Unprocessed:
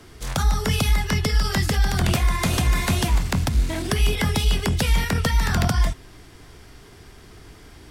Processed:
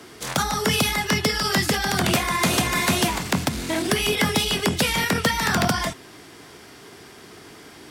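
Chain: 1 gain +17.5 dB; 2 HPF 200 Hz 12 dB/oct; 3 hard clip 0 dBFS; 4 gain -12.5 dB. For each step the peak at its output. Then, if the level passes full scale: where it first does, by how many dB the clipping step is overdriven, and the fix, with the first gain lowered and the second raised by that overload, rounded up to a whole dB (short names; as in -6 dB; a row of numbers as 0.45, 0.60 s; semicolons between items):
+8.0, +9.0, 0.0, -12.5 dBFS; step 1, 9.0 dB; step 1 +8.5 dB, step 4 -3.5 dB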